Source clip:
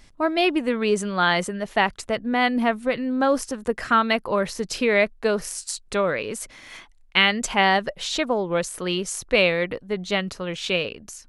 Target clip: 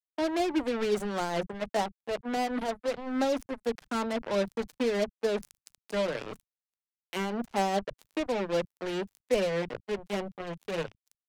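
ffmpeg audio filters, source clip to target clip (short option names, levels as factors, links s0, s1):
-filter_complex "[0:a]bandreject=f=1200:w=8.4,acrossover=split=360|870[s0][s1][s2];[s2]acompressor=threshold=0.0126:ratio=6[s3];[s0][s1][s3]amix=inputs=3:normalize=0,flanger=delay=3.5:depth=3.2:regen=-56:speed=0.23:shape=sinusoidal,acrusher=bits=4:mix=0:aa=0.5,tremolo=f=5:d=0.33,atempo=1,acrossover=split=170[s4][s5];[s4]adelay=30[s6];[s6][s5]amix=inputs=2:normalize=0"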